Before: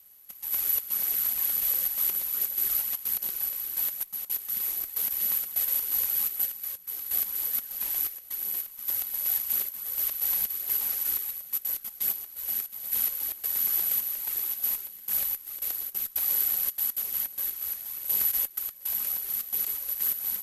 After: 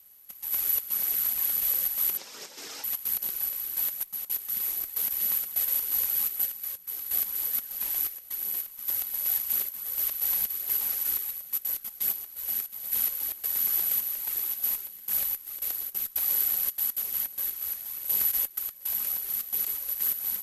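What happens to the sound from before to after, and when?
0:02.17–0:02.84: loudspeaker in its box 190–7,000 Hz, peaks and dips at 290 Hz +4 dB, 470 Hz +8 dB, 840 Hz +5 dB, 5,300 Hz +6 dB

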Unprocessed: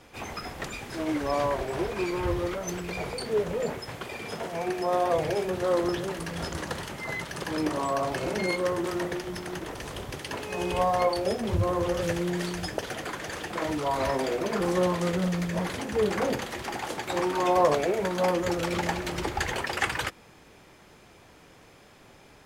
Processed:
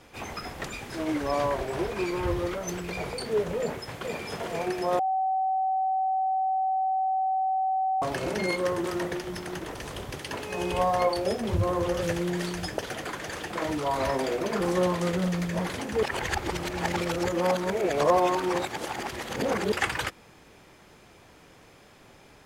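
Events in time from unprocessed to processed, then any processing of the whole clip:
0:03.59–0:04.20: delay throw 450 ms, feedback 65%, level −4.5 dB
0:04.99–0:08.02: beep over 761 Hz −23 dBFS
0:16.03–0:19.72: reverse

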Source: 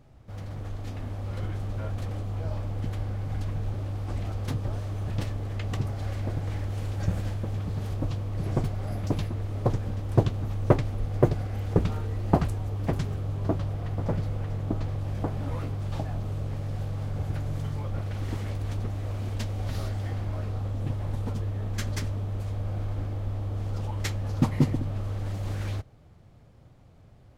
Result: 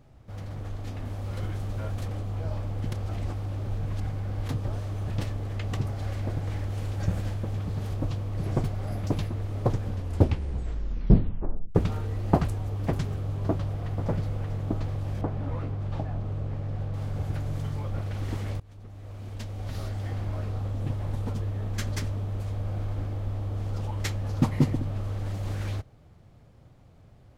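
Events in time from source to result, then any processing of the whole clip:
0:01.05–0:02.08: high-shelf EQ 4,800 Hz +5 dB
0:02.92–0:04.49: reverse
0:09.88: tape stop 1.87 s
0:15.21–0:16.94: low-pass filter 2,100 Hz 6 dB per octave
0:18.60–0:20.24: fade in, from −24 dB

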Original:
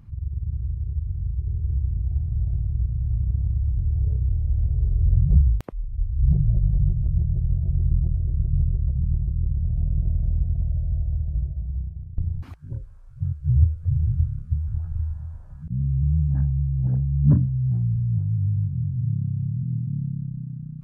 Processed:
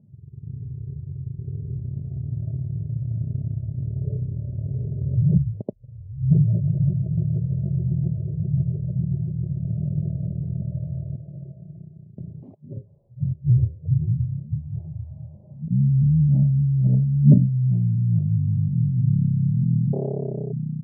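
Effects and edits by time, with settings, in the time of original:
0:11.15–0:12.77: high-pass filter 290 Hz 6 dB per octave
0:19.92–0:20.53: saturating transformer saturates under 670 Hz
whole clip: elliptic band-pass filter 110–610 Hz, stop band 40 dB; comb filter 4.9 ms, depth 45%; automatic gain control gain up to 9.5 dB; level −1.5 dB

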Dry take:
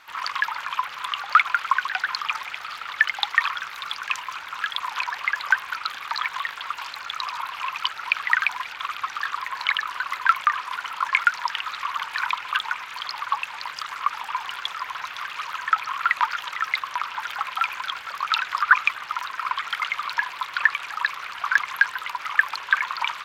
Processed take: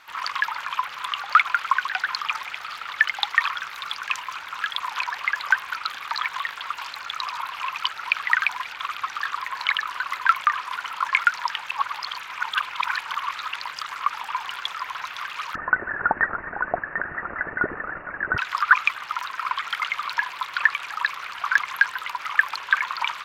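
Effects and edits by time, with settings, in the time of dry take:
0:11.58–0:13.56: reverse
0:15.55–0:18.38: voice inversion scrambler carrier 2,800 Hz

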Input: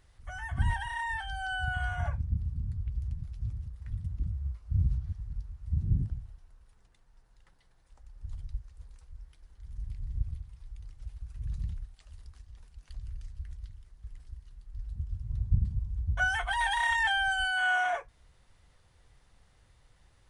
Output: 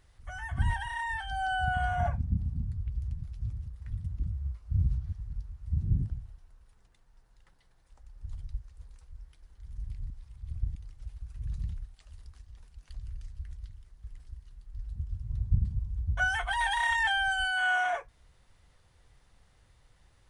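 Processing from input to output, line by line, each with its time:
0:01.31–0:02.64: hollow resonant body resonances 220/700 Hz, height 10 dB, ringing for 25 ms
0:10.10–0:10.75: reverse

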